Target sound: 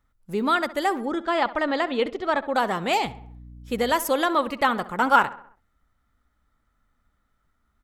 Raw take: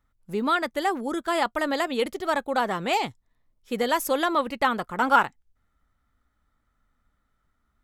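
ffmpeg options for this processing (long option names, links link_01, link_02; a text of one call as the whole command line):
ffmpeg -i in.wav -filter_complex "[0:a]asettb=1/sr,asplit=3[link_01][link_02][link_03];[link_01]atrim=end=1.054[link_04];[link_02]atrim=start=1.05:end=2.55,asetpts=PTS-STARTPTS,afade=type=in:duration=0.004:curve=qsin,afade=type=out:start_time=1.496:duration=0.004:curve=qsin,lowpass=4000[link_05];[link_03]atrim=start=2.546[link_06];[link_04][link_05]acrossfade=duration=0.004:curve1=hsin:curve2=qsin[link_07];[link_07][link_06]acrossfade=duration=0.004:curve1=qsin:curve2=hsin,asettb=1/sr,asplit=3[link_08][link_09][link_10];[link_08]atrim=end=3.054[link_11];[link_09]atrim=start=3.05:end=3.93,asetpts=PTS-STARTPTS,afade=type=in:duration=0.004:curve=qsin,afade=type=out:start_time=0.876:duration=0.004:curve=qsin,aeval=exprs='val(0)+0.00562*(sin(2*PI*60*n/s)+sin(2*PI*2*60*n/s)/2+sin(2*PI*3*60*n/s)/3+sin(2*PI*4*60*n/s)/4+sin(2*PI*5*60*n/s)/5)':channel_layout=same[link_12];[link_10]atrim=start=3.926[link_13];[link_11][link_12]acrossfade=duration=0.004:curve1=hsin:curve2=qsin[link_14];[link_14][link_13]acrossfade=duration=0.004:curve1=qsin:curve2=hsin,asplit=2[link_15][link_16];[link_16]adelay=66,lowpass=frequency=2900:poles=1,volume=-16dB,asplit=2[link_17][link_18];[link_18]adelay=66,lowpass=frequency=2900:poles=1,volume=0.51,asplit=2[link_19][link_20];[link_20]adelay=66,lowpass=frequency=2900:poles=1,volume=0.51,asplit=2[link_21][link_22];[link_22]adelay=66,lowpass=frequency=2900:poles=1,volume=0.51,asplit=2[link_23][link_24];[link_24]adelay=66,lowpass=frequency=2900:poles=1,volume=0.51[link_25];[link_17][link_19][link_21][link_23][link_25]amix=inputs=5:normalize=0[link_26];[link_15][link_26]amix=inputs=2:normalize=0,volume=1.5dB" out.wav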